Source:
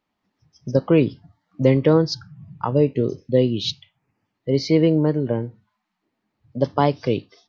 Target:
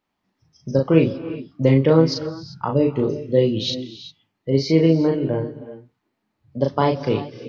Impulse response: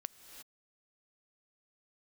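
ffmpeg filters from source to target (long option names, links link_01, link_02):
-filter_complex "[0:a]asplit=2[link_01][link_02];[1:a]atrim=start_sample=2205,adelay=37[link_03];[link_02][link_03]afir=irnorm=-1:irlink=0,volume=0.5dB[link_04];[link_01][link_04]amix=inputs=2:normalize=0,volume=-1dB"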